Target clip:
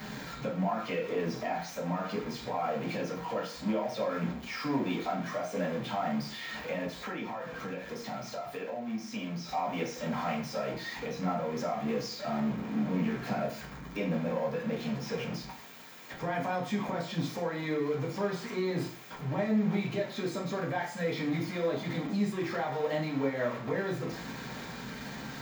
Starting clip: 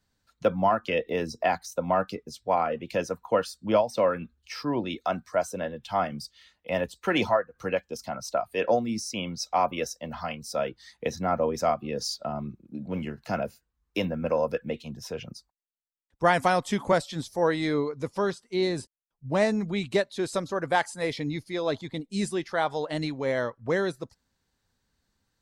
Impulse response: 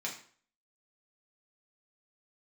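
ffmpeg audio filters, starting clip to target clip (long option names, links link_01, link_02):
-filter_complex "[0:a]aeval=exprs='val(0)+0.5*0.0398*sgn(val(0))':channel_layout=same,alimiter=limit=-20dB:level=0:latency=1:release=172,equalizer=frequency=9100:width=0.41:gain=-14.5[link_01];[1:a]atrim=start_sample=2205[link_02];[link_01][link_02]afir=irnorm=-1:irlink=0,asettb=1/sr,asplit=3[link_03][link_04][link_05];[link_03]atrim=end=6.914[link_06];[link_04]atrim=start=6.91:end=9.49,asetpts=PTS-STARTPTS,afade=type=in:duration=0.004:curve=qsin,afade=type=out:start_time=2.576:duration=0.004:curve=qsin,acompressor=threshold=-34dB:ratio=2[link_07];[link_05]atrim=start=9.486[link_08];[link_06][link_07]acrossfade=duration=0.004:curve1=hsin:curve2=qsin[link_09];[link_09][link_08]acrossfade=duration=0.004:curve1=qsin:curve2=hsin,volume=-4dB"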